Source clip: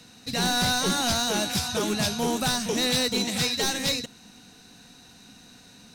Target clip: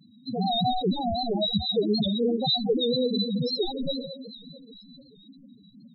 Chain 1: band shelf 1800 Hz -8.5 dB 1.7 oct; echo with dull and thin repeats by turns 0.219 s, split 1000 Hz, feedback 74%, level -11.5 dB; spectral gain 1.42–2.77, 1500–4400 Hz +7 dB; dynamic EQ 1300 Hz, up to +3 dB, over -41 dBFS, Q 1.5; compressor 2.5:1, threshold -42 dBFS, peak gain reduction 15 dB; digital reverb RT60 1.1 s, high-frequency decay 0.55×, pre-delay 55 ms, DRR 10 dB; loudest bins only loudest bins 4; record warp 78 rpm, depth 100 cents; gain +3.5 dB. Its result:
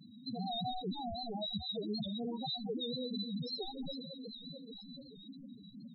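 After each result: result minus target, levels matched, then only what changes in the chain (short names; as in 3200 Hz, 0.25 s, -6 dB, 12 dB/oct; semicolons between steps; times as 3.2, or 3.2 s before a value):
compressor: peak gain reduction +15 dB; 500 Hz band -2.0 dB
remove: compressor 2.5:1, threshold -42 dBFS, peak gain reduction 15 dB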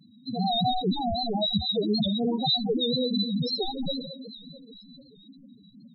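500 Hz band -3.0 dB
change: dynamic EQ 460 Hz, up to +3 dB, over -41 dBFS, Q 1.5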